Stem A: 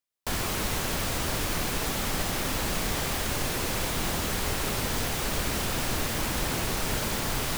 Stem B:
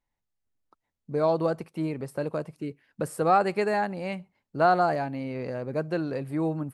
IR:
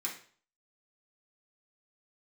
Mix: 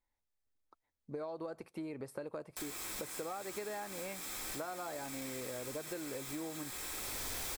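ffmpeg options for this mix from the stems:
-filter_complex "[0:a]highshelf=f=3.9k:g=6.5,asoftclip=type=tanh:threshold=-24.5dB,adelay=2300,volume=-1.5dB,asplit=2[a][b];[b]volume=-12.5dB[c];[1:a]bandreject=f=700:w=20,acompressor=threshold=-26dB:ratio=6,volume=-3dB,asplit=2[d][e];[e]apad=whole_len=435277[f];[a][f]sidechaincompress=threshold=-52dB:ratio=4:attack=16:release=521[g];[2:a]atrim=start_sample=2205[h];[c][h]afir=irnorm=-1:irlink=0[i];[g][d][i]amix=inputs=3:normalize=0,equalizer=f=160:t=o:w=0.78:g=-10,bandreject=f=2.9k:w=11,acompressor=threshold=-40dB:ratio=4"

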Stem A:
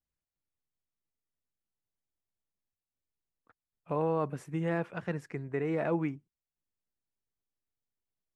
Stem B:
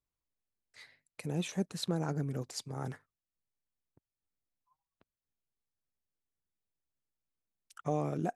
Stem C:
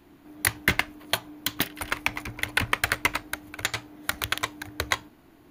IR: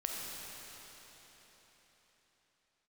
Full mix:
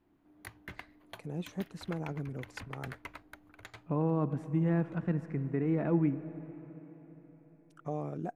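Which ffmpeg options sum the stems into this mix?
-filter_complex "[0:a]lowshelf=f=360:t=q:w=1.5:g=6.5,volume=-4dB,asplit=3[a][b][c];[b]volume=-12dB[d];[1:a]volume=-3.5dB[e];[2:a]alimiter=limit=-9dB:level=0:latency=1:release=137,volume=-15.5dB[f];[c]apad=whole_len=242735[g];[f][g]sidechaincompress=threshold=-54dB:ratio=4:attack=16:release=647[h];[3:a]atrim=start_sample=2205[i];[d][i]afir=irnorm=-1:irlink=0[j];[a][e][h][j]amix=inputs=4:normalize=0,highshelf=f=2.7k:g=-12"

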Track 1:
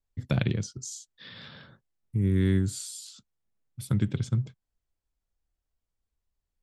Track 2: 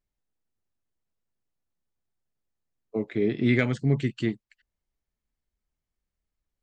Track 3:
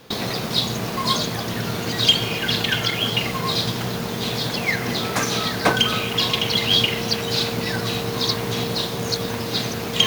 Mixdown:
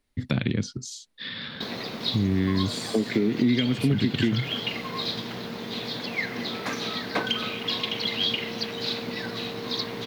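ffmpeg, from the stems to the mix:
-filter_complex "[0:a]equalizer=f=600:w=0.67:g=-5,alimiter=limit=-20.5dB:level=0:latency=1:release=85,adynamicequalizer=threshold=0.00126:dfrequency=2300:dqfactor=0.7:tfrequency=2300:tqfactor=0.7:attack=5:release=100:ratio=0.375:range=2.5:mode=cutabove:tftype=highshelf,volume=2.5dB[a];[1:a]equalizer=f=9.5k:w=1.8:g=15,acrossover=split=250[b][c];[c]acompressor=threshold=-34dB:ratio=6[d];[b][d]amix=inputs=2:normalize=0,volume=2.5dB[e];[2:a]adelay=1500,volume=-17dB[f];[a][e][f]amix=inputs=3:normalize=0,equalizer=f=250:t=o:w=1:g=11,equalizer=f=500:t=o:w=1:g=6,equalizer=f=1k:t=o:w=1:g=5,equalizer=f=2k:t=o:w=1:g=8,equalizer=f=4k:t=o:w=1:g=10,equalizer=f=8k:t=o:w=1:g=-4,acompressor=threshold=-20dB:ratio=4"

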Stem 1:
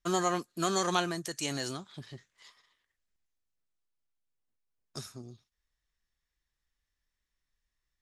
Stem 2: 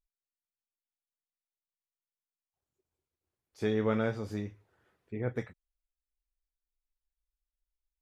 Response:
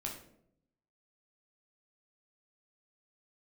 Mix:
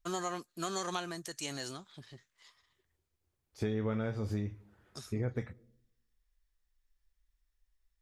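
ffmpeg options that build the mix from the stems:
-filter_complex "[0:a]lowshelf=f=230:g=-9.5,volume=-4.5dB[a];[1:a]volume=1.5dB,asplit=2[b][c];[c]volume=-22.5dB[d];[2:a]atrim=start_sample=2205[e];[d][e]afir=irnorm=-1:irlink=0[f];[a][b][f]amix=inputs=3:normalize=0,lowshelf=f=120:g=11.5,acompressor=threshold=-31dB:ratio=5"

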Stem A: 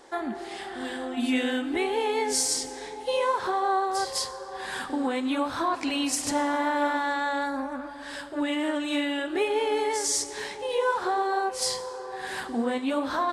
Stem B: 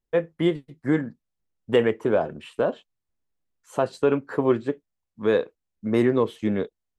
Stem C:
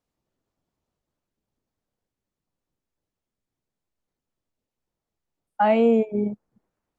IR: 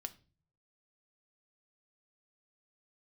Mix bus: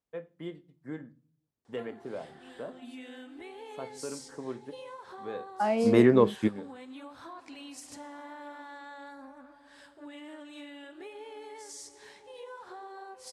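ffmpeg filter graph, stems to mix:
-filter_complex "[0:a]acompressor=threshold=-24dB:ratio=6,adelay=1650,volume=-17dB[a];[1:a]volume=-0.5dB,asplit=2[b][c];[c]volume=-16.5dB[d];[2:a]volume=-8.5dB,asplit=2[e][f];[f]apad=whole_len=307939[g];[b][g]sidechaingate=range=-29dB:threshold=-55dB:ratio=16:detection=peak[h];[3:a]atrim=start_sample=2205[i];[d][i]afir=irnorm=-1:irlink=0[j];[a][h][e][j]amix=inputs=4:normalize=0,highpass=49"

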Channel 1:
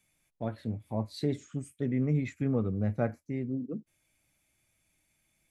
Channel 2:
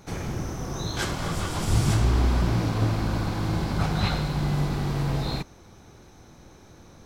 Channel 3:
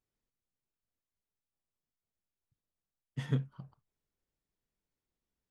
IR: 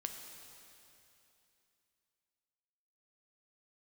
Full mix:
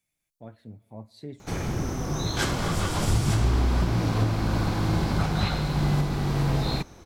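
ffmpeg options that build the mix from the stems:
-filter_complex "[0:a]volume=-10.5dB,asplit=2[a][b];[b]volume=-14dB[c];[1:a]adelay=1400,volume=2dB[d];[2:a]aexciter=amount=9.9:drive=6:freq=3k,volume=-16.5dB[e];[3:a]atrim=start_sample=2205[f];[c][f]afir=irnorm=-1:irlink=0[g];[a][d][e][g]amix=inputs=4:normalize=0,alimiter=limit=-13.5dB:level=0:latency=1:release=377"

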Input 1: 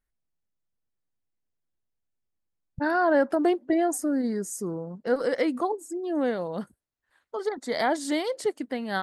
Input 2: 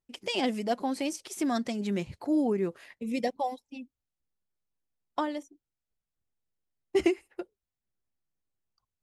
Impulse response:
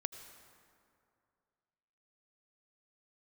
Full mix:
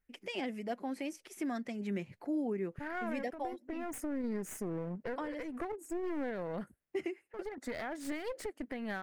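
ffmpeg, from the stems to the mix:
-filter_complex "[0:a]acompressor=threshold=-30dB:ratio=12,alimiter=level_in=2dB:limit=-24dB:level=0:latency=1:release=271,volume=-2dB,aeval=exprs='clip(val(0),-1,0.0106)':c=same,volume=0dB[a];[1:a]highpass=f=120:w=0.5412,highpass=f=120:w=1.3066,volume=-5dB,asplit=2[b][c];[c]apad=whole_len=398222[d];[a][d]sidechaincompress=threshold=-35dB:ratio=8:attack=24:release=676[e];[e][b]amix=inputs=2:normalize=0,equalizer=f=1k:t=o:w=1:g=-4,equalizer=f=2k:t=o:w=1:g=6,equalizer=f=4k:t=o:w=1:g=-8,equalizer=f=8k:t=o:w=1:g=-6,alimiter=level_in=3.5dB:limit=-24dB:level=0:latency=1:release=438,volume=-3.5dB"

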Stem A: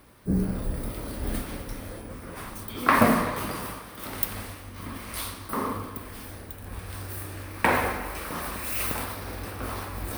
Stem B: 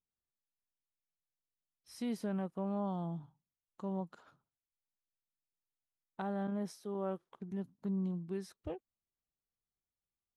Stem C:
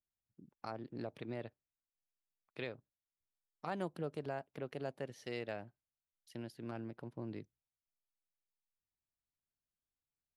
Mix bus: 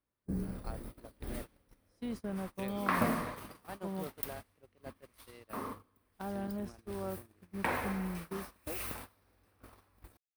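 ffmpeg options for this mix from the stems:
-filter_complex "[0:a]volume=-11.5dB[a];[1:a]volume=-2dB[b];[2:a]highpass=f=150:p=1,volume=-3.5dB[c];[a][b][c]amix=inputs=3:normalize=0,agate=range=-23dB:threshold=-41dB:ratio=16:detection=peak"

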